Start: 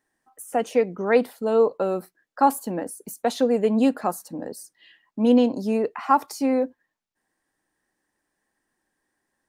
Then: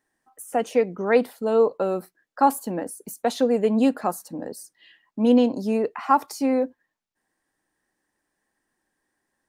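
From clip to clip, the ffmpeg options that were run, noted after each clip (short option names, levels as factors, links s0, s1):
-af anull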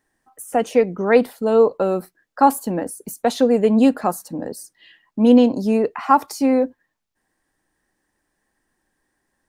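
-af "lowshelf=f=100:g=10,volume=1.58"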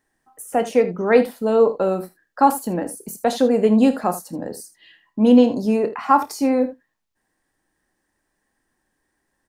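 -af "aecho=1:1:28|52|79:0.251|0.141|0.188,volume=0.891"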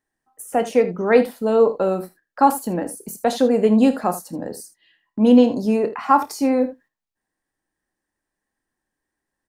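-af "agate=range=0.355:threshold=0.00501:ratio=16:detection=peak"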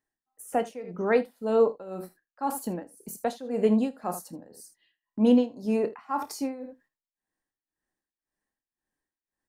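-af "tremolo=f=1.9:d=0.87,volume=0.531"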